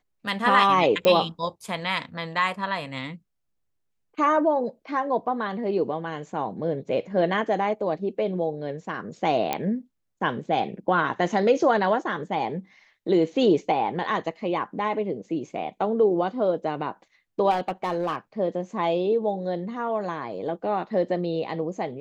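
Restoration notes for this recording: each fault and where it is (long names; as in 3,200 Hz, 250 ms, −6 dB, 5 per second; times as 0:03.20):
0:01.05: click −9 dBFS
0:09.53: click −10 dBFS
0:17.50–0:18.16: clipping −20.5 dBFS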